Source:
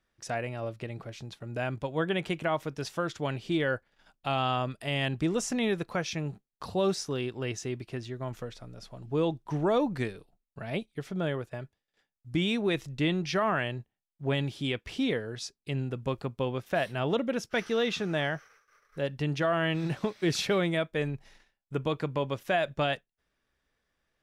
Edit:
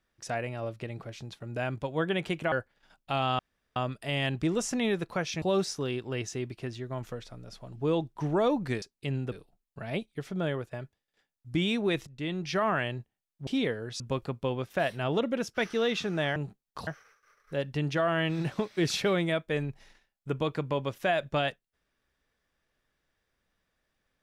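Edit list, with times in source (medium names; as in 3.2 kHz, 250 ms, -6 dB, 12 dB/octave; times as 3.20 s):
2.52–3.68 s: delete
4.55 s: insert room tone 0.37 s
6.21–6.72 s: move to 18.32 s
12.87–13.42 s: fade in, from -14 dB
14.27–14.93 s: delete
15.46–15.96 s: move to 10.12 s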